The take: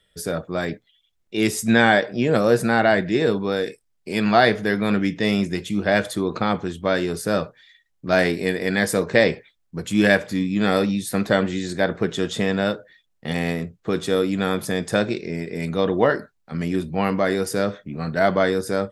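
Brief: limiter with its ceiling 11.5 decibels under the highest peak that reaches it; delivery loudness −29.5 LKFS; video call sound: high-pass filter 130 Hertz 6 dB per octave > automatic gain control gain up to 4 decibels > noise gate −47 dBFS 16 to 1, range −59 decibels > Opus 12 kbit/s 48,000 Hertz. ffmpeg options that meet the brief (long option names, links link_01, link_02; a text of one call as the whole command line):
ffmpeg -i in.wav -af "alimiter=limit=-12.5dB:level=0:latency=1,highpass=frequency=130:poles=1,dynaudnorm=maxgain=4dB,agate=range=-59dB:threshold=-47dB:ratio=16,volume=-3.5dB" -ar 48000 -c:a libopus -b:a 12k out.opus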